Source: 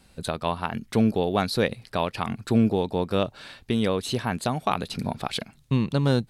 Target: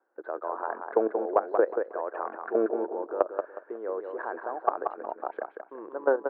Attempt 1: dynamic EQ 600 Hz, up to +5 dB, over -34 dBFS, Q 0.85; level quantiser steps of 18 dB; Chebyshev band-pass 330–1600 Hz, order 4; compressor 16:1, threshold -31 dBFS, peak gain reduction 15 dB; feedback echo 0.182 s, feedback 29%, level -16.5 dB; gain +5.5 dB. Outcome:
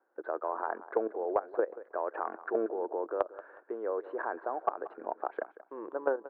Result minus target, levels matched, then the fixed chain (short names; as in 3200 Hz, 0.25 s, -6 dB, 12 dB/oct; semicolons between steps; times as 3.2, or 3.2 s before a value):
compressor: peak gain reduction +7 dB; echo-to-direct -10.5 dB
dynamic EQ 600 Hz, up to +5 dB, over -34 dBFS, Q 0.85; level quantiser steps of 18 dB; Chebyshev band-pass 330–1600 Hz, order 4; compressor 16:1, threshold -23.5 dBFS, peak gain reduction 8 dB; feedback echo 0.182 s, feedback 29%, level -6 dB; gain +5.5 dB